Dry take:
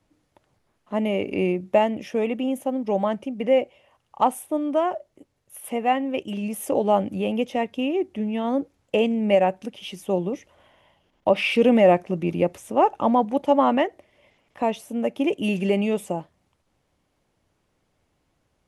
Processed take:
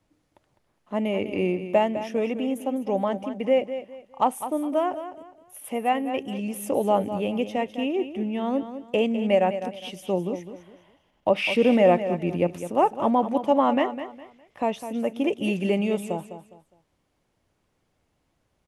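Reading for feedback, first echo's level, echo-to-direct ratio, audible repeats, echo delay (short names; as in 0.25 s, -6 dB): 29%, -11.0 dB, -10.5 dB, 3, 0.205 s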